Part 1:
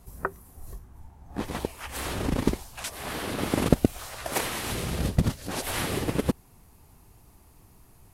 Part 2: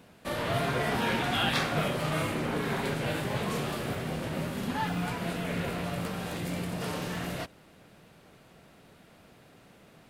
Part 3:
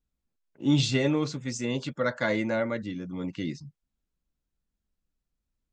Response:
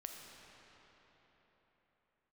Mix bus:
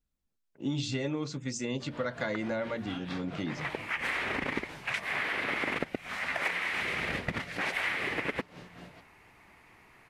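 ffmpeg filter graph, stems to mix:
-filter_complex "[0:a]lowpass=f=2.1k:t=q:w=3.8,aemphasis=mode=production:type=riaa,adelay=2100,volume=2dB[a];[1:a]tremolo=f=4.4:d=0.71,lowpass=5.6k,adelay=1550,volume=-12dB[b];[2:a]bandreject=f=58.69:t=h:w=4,bandreject=f=117.38:t=h:w=4,bandreject=f=176.07:t=h:w=4,bandreject=f=234.76:t=h:w=4,bandreject=f=293.45:t=h:w=4,bandreject=f=352.14:t=h:w=4,volume=-1dB,asplit=2[c][d];[d]apad=whole_len=451472[e];[a][e]sidechaincompress=threshold=-42dB:ratio=3:attack=16:release=413[f];[f][b][c]amix=inputs=3:normalize=0,acompressor=threshold=-29dB:ratio=6"

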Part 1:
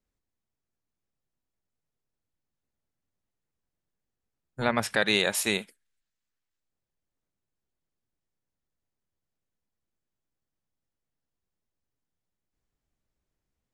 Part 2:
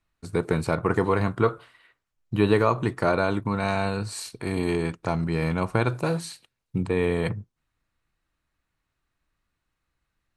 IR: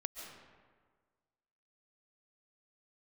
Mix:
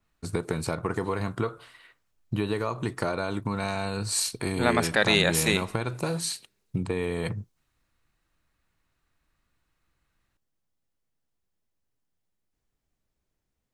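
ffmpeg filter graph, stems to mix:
-filter_complex "[0:a]volume=1.5dB,asplit=2[a][b];[b]volume=-18dB[c];[1:a]acompressor=threshold=-28dB:ratio=6,adynamicequalizer=threshold=0.002:dfrequency=3400:dqfactor=0.7:tfrequency=3400:tqfactor=0.7:attack=5:release=100:ratio=0.375:range=3.5:mode=boostabove:tftype=highshelf,volume=3dB[d];[2:a]atrim=start_sample=2205[e];[c][e]afir=irnorm=-1:irlink=0[f];[a][d][f]amix=inputs=3:normalize=0"

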